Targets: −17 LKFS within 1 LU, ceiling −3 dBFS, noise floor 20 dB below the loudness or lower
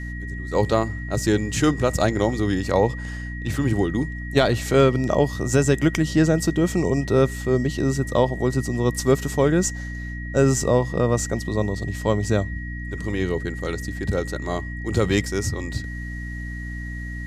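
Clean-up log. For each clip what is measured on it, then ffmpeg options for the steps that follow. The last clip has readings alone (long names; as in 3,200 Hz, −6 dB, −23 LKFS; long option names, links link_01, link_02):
mains hum 60 Hz; hum harmonics up to 300 Hz; level of the hum −29 dBFS; interfering tone 1,900 Hz; level of the tone −36 dBFS; integrated loudness −23.0 LKFS; sample peak −5.5 dBFS; target loudness −17.0 LKFS
→ -af "bandreject=frequency=60:width_type=h:width=4,bandreject=frequency=120:width_type=h:width=4,bandreject=frequency=180:width_type=h:width=4,bandreject=frequency=240:width_type=h:width=4,bandreject=frequency=300:width_type=h:width=4"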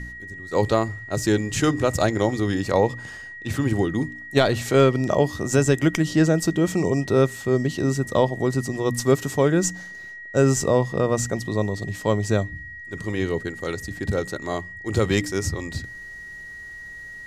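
mains hum none found; interfering tone 1,900 Hz; level of the tone −36 dBFS
→ -af "bandreject=frequency=1900:width=30"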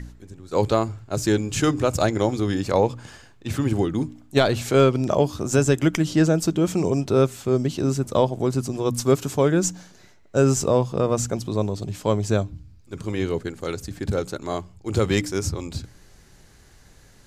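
interfering tone none found; integrated loudness −23.0 LKFS; sample peak −5.0 dBFS; target loudness −17.0 LKFS
→ -af "volume=6dB,alimiter=limit=-3dB:level=0:latency=1"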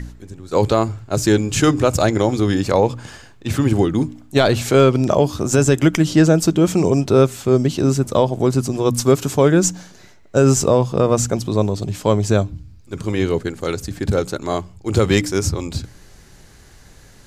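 integrated loudness −17.5 LKFS; sample peak −3.0 dBFS; background noise floor −46 dBFS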